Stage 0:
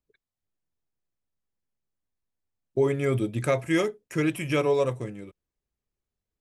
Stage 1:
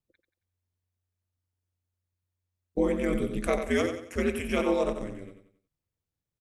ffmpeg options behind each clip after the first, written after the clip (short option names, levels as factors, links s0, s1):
-af "aeval=exprs='val(0)*sin(2*PI*90*n/s)':c=same,aecho=1:1:91|182|273|364:0.398|0.147|0.0545|0.0202"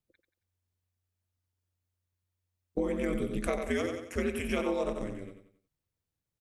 -af "acompressor=threshold=0.0447:ratio=4"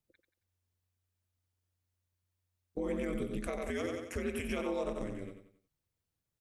-af "alimiter=level_in=1.19:limit=0.0631:level=0:latency=1:release=218,volume=0.841"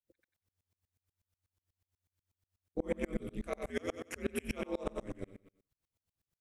-af "aeval=exprs='val(0)*pow(10,-33*if(lt(mod(-8.2*n/s,1),2*abs(-8.2)/1000),1-mod(-8.2*n/s,1)/(2*abs(-8.2)/1000),(mod(-8.2*n/s,1)-2*abs(-8.2)/1000)/(1-2*abs(-8.2)/1000))/20)':c=same,volume=2.11"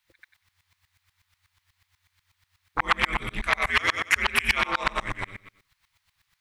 -af "aeval=exprs='0.1*sin(PI/2*3.16*val(0)/0.1)':c=same,equalizer=f=250:t=o:w=1:g=-10,equalizer=f=500:t=o:w=1:g=-12,equalizer=f=1000:t=o:w=1:g=10,equalizer=f=2000:t=o:w=1:g=12,equalizer=f=4000:t=o:w=1:g=8"